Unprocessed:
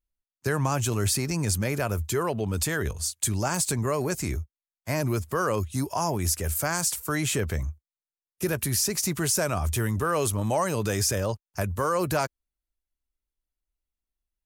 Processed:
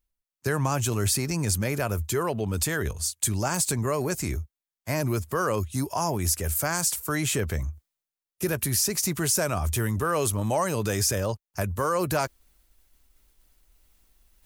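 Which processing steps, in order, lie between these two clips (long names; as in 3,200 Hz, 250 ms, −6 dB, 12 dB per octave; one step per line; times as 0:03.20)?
high-shelf EQ 12,000 Hz +4 dB
reversed playback
upward compression, threshold −40 dBFS
reversed playback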